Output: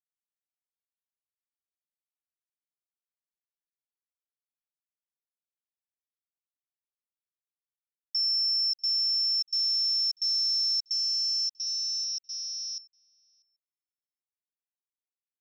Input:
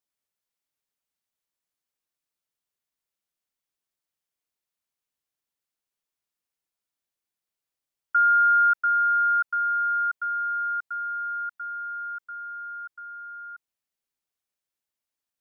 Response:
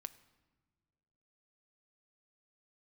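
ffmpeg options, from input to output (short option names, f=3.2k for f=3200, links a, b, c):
-filter_complex "[0:a]afftfilt=real='real(if(lt(b,736),b+184*(1-2*mod(floor(b/184),2)),b),0)':imag='imag(if(lt(b,736),b+184*(1-2*mod(floor(b/184),2)),b),0)':win_size=2048:overlap=0.75,afwtdn=0.0141,agate=range=-33dB:threshold=-41dB:ratio=3:detection=peak,asplit=2[a][b];[b]acompressor=threshold=-34dB:ratio=6,volume=2dB[c];[a][c]amix=inputs=2:normalize=0,alimiter=limit=-21dB:level=0:latency=1,asplit=2[d][e];[e]adelay=641.4,volume=-22dB,highshelf=f=4k:g=-14.4[f];[d][f]amix=inputs=2:normalize=0,volume=-2dB"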